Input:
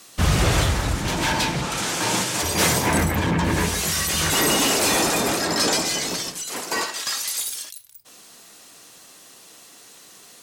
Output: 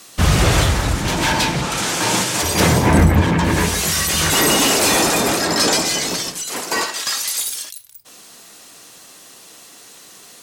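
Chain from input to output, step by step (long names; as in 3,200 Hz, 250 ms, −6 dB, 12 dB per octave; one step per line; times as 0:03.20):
0:02.60–0:03.24: spectral tilt −2 dB per octave
level +4.5 dB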